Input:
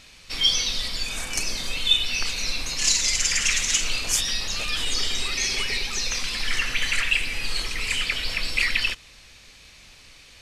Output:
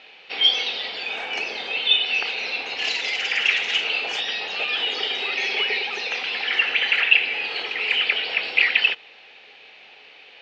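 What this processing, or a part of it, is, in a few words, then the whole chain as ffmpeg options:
phone earpiece: -af "highpass=420,equalizer=f=430:t=q:w=4:g=9,equalizer=f=790:t=q:w=4:g=10,equalizer=f=1.1k:t=q:w=4:g=-6,equalizer=f=2.8k:t=q:w=4:g=5,lowpass=f=3.4k:w=0.5412,lowpass=f=3.4k:w=1.3066,volume=3.5dB"

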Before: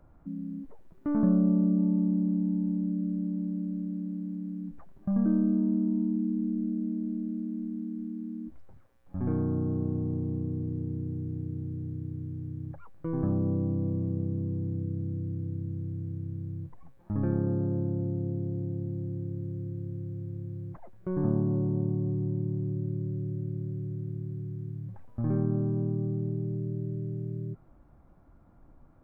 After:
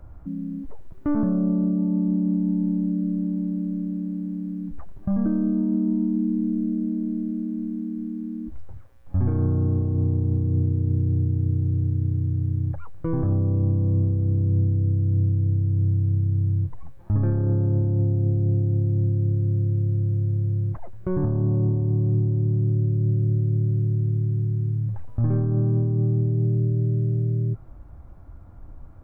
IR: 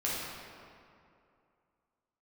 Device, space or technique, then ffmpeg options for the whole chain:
car stereo with a boomy subwoofer: -af "lowshelf=f=130:t=q:w=1.5:g=7.5,alimiter=limit=-22.5dB:level=0:latency=1:release=55,volume=7.5dB"

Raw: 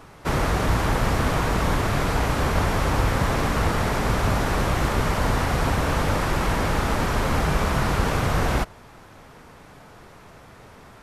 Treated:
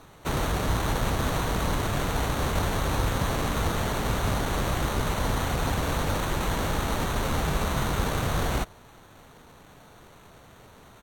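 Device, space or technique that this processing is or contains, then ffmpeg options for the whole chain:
crushed at another speed: -af "asetrate=55125,aresample=44100,acrusher=samples=7:mix=1:aa=0.000001,asetrate=35280,aresample=44100,volume=-4.5dB"

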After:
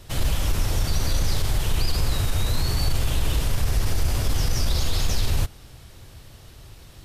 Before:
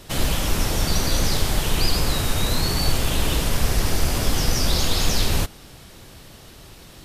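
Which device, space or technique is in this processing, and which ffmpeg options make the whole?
car stereo with a boomy subwoofer: -af "lowshelf=f=140:t=q:w=1.5:g=6.5,alimiter=limit=-8dB:level=0:latency=1:release=21,volume=-5dB"

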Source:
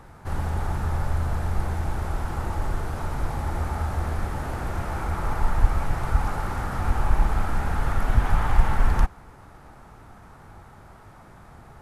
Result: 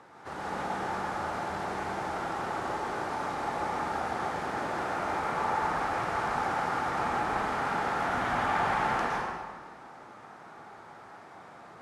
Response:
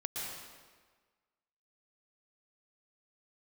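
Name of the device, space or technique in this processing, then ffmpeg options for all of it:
supermarket ceiling speaker: -filter_complex "[0:a]highpass=290,lowpass=6.7k[a];[1:a]atrim=start_sample=2205[b];[a][b]afir=irnorm=-1:irlink=0"

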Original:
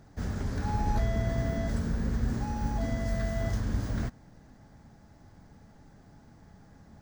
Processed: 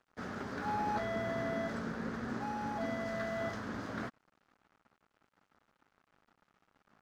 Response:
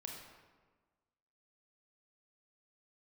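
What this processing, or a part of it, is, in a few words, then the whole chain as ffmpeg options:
pocket radio on a weak battery: -af "highpass=260,lowpass=4.1k,aeval=exprs='sgn(val(0))*max(abs(val(0))-0.0015,0)':c=same,equalizer=f=1.3k:t=o:w=0.56:g=7"

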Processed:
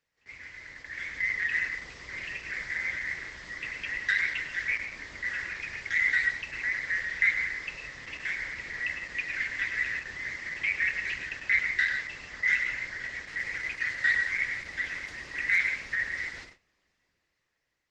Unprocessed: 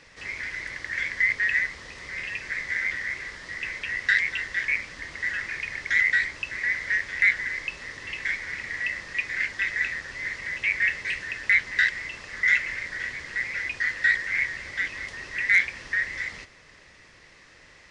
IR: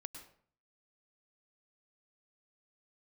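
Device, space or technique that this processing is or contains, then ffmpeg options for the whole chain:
speakerphone in a meeting room: -filter_complex "[1:a]atrim=start_sample=2205[a];[0:a][a]afir=irnorm=-1:irlink=0,dynaudnorm=f=250:g=9:m=8.5dB,agate=range=-18dB:threshold=-40dB:ratio=16:detection=peak,volume=-7dB" -ar 48000 -c:a libopus -b:a 12k

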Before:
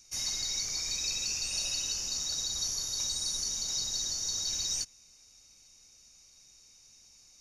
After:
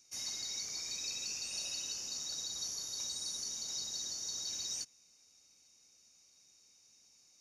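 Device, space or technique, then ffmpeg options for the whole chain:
filter by subtraction: -filter_complex "[0:a]asplit=2[a][b];[b]lowpass=280,volume=-1[c];[a][c]amix=inputs=2:normalize=0,volume=-7dB"

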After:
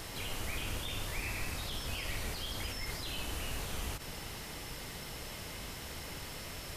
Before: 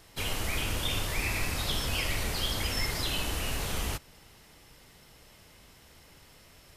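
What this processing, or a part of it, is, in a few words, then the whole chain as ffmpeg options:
de-esser from a sidechain: -filter_complex "[0:a]asplit=2[a][b];[b]highpass=4.8k,apad=whole_len=298127[c];[a][c]sidechaincompress=threshold=-57dB:ratio=10:attack=1.1:release=40,volume=13dB"

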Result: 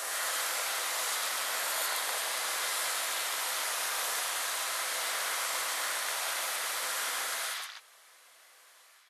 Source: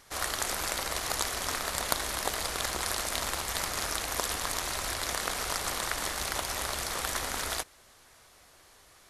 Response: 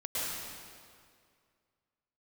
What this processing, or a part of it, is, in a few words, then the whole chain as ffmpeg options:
ghost voice: -filter_complex "[0:a]acrossover=split=970|5600[a][b][c];[c]adelay=40[d];[b]adelay=170[e];[a][e][d]amix=inputs=3:normalize=0,areverse[f];[1:a]atrim=start_sample=2205[g];[f][g]afir=irnorm=-1:irlink=0,areverse,highpass=770,volume=-3.5dB"

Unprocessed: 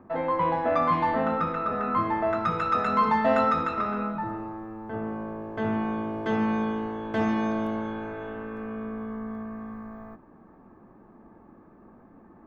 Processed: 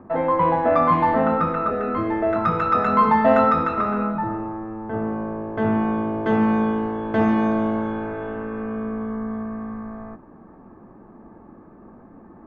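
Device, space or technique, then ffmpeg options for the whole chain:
through cloth: -filter_complex "[0:a]highshelf=f=3.5k:g=-14.5,asettb=1/sr,asplit=3[a][b][c];[a]atrim=end=1.704[d];[b]atrim=start=1.7:end=2.36,asetpts=PTS-STARTPTS,afade=t=in:d=0.004:c=qsin,afade=t=out:st=0.656:d=0.004:c=qsin,equalizer=f=160:t=o:w=0.67:g=-10,equalizer=f=400:t=o:w=0.67:g=5,equalizer=f=1k:t=o:w=0.67:g=-11[e];[c]atrim=start=2.356[f];[d][e]acrossfade=d=0.004:c1=hsin:c2=qsin[g];[g][f]acrossfade=d=0.004:c1=qsin:c2=hsin,volume=7dB"

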